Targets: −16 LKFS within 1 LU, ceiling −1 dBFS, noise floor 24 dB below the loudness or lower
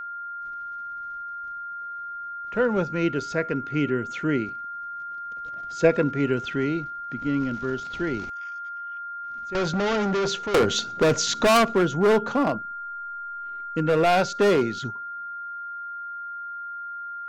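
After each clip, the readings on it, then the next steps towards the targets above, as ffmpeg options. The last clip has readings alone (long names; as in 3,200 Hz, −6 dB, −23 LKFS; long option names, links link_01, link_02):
interfering tone 1,400 Hz; level of the tone −32 dBFS; integrated loudness −26.0 LKFS; sample peak −6.5 dBFS; target loudness −16.0 LKFS
→ -af "bandreject=frequency=1400:width=30"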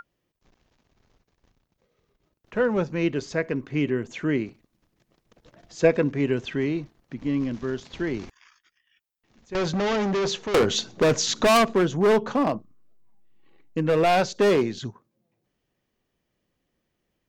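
interfering tone none found; integrated loudness −24.0 LKFS; sample peak −6.5 dBFS; target loudness −16.0 LKFS
→ -af "volume=8dB,alimiter=limit=-1dB:level=0:latency=1"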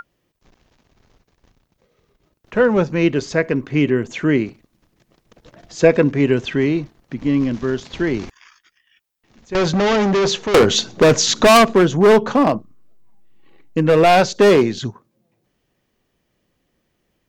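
integrated loudness −16.0 LKFS; sample peak −1.0 dBFS; background noise floor −70 dBFS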